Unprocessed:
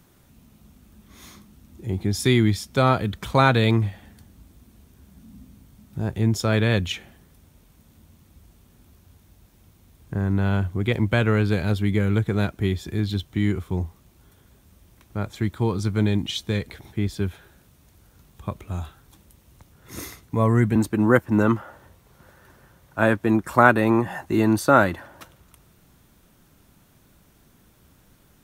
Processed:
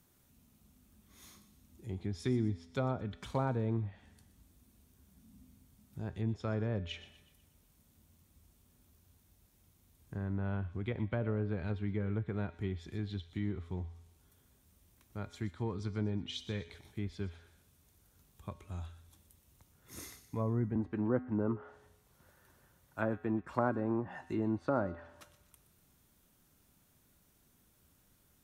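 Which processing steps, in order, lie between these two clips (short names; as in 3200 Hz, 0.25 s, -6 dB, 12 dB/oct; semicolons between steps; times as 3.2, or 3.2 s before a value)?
treble ducked by the level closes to 800 Hz, closed at -15 dBFS; high shelf 5800 Hz +8.5 dB; resonator 84 Hz, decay 0.89 s, harmonics odd, mix 60%; thin delay 0.122 s, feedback 46%, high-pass 2300 Hz, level -13 dB; gain -6.5 dB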